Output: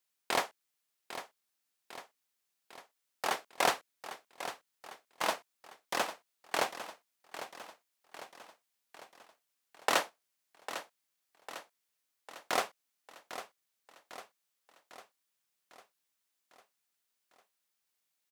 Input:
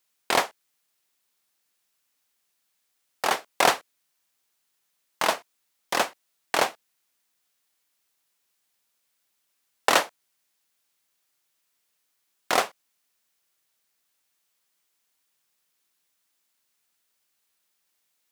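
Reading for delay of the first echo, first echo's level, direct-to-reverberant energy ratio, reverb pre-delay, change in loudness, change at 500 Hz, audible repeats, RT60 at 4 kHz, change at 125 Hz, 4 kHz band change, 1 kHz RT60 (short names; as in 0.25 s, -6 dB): 0.801 s, -12.0 dB, none, none, -11.0 dB, -8.0 dB, 5, none, -8.0 dB, -8.0 dB, none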